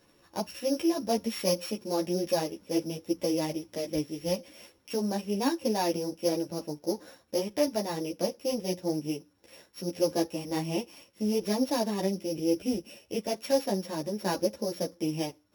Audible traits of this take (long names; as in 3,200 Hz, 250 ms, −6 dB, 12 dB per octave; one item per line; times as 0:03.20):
a buzz of ramps at a fixed pitch in blocks of 8 samples
a shimmering, thickened sound